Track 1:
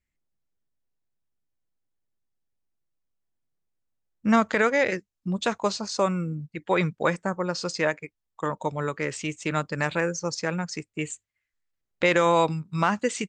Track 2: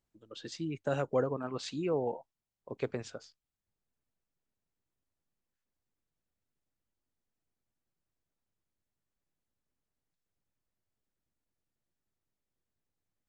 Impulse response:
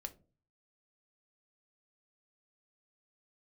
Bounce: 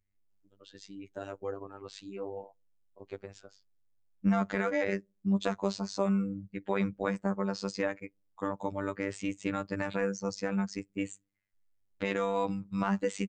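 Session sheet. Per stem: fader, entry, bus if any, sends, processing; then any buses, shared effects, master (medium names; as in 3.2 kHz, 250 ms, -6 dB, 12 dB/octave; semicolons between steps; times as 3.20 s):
-3.5 dB, 0.00 s, send -23.5 dB, tilt EQ -2 dB/octave; peak limiter -14.5 dBFS, peak gain reduction 6.5 dB
-5.5 dB, 0.30 s, send -23.5 dB, none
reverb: on, RT60 0.40 s, pre-delay 3 ms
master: robot voice 98.5 Hz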